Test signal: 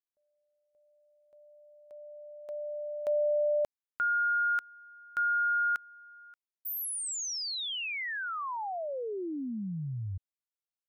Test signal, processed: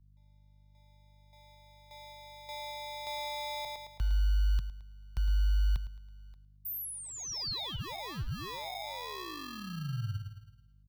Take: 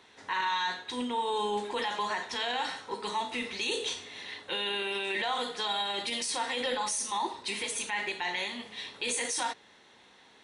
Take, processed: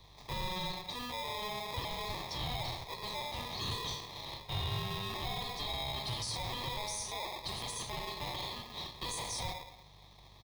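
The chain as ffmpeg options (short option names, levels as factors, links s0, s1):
-filter_complex "[0:a]lowshelf=f=140:g=-5.5,asplit=2[s0][s1];[s1]adelay=109,lowpass=f=830:p=1,volume=0.501,asplit=2[s2][s3];[s3]adelay=109,lowpass=f=830:p=1,volume=0.5,asplit=2[s4][s5];[s5]adelay=109,lowpass=f=830:p=1,volume=0.5,asplit=2[s6][s7];[s7]adelay=109,lowpass=f=830:p=1,volume=0.5,asplit=2[s8][s9];[s9]adelay=109,lowpass=f=830:p=1,volume=0.5,asplit=2[s10][s11];[s11]adelay=109,lowpass=f=830:p=1,volume=0.5[s12];[s0][s2][s4][s6][s8][s10][s12]amix=inputs=7:normalize=0,acrossover=split=4000[s13][s14];[s13]acrusher=samples=30:mix=1:aa=0.000001[s15];[s15][s14]amix=inputs=2:normalize=0,aeval=exprs='val(0)+0.001*(sin(2*PI*50*n/s)+sin(2*PI*2*50*n/s)/2+sin(2*PI*3*50*n/s)/3+sin(2*PI*4*50*n/s)/4+sin(2*PI*5*50*n/s)/5)':c=same,equalizer=f=125:t=o:w=1:g=6,equalizer=f=250:t=o:w=1:g=-11,equalizer=f=500:t=o:w=1:g=-8,equalizer=f=1000:t=o:w=1:g=4,equalizer=f=2000:t=o:w=1:g=-3,equalizer=f=4000:t=o:w=1:g=9,equalizer=f=8000:t=o:w=1:g=-10,acrossover=split=160[s16][s17];[s17]acompressor=threshold=0.0251:ratio=3:attack=0.18:release=43:knee=2.83:detection=peak[s18];[s16][s18]amix=inputs=2:normalize=0"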